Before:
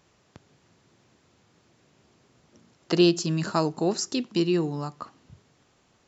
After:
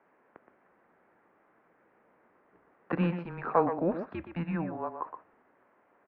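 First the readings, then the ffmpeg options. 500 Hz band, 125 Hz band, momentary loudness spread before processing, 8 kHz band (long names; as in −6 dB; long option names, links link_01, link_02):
−5.5 dB, −6.0 dB, 15 LU, can't be measured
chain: -filter_complex "[0:a]asplit=2[link_01][link_02];[link_02]adelay=120,highpass=300,lowpass=3400,asoftclip=type=hard:threshold=-16dB,volume=-8dB[link_03];[link_01][link_03]amix=inputs=2:normalize=0,highpass=frequency=480:width_type=q:width=0.5412,highpass=frequency=480:width_type=q:width=1.307,lowpass=frequency=2100:width_type=q:width=0.5176,lowpass=frequency=2100:width_type=q:width=0.7071,lowpass=frequency=2100:width_type=q:width=1.932,afreqshift=-170,volume=2dB"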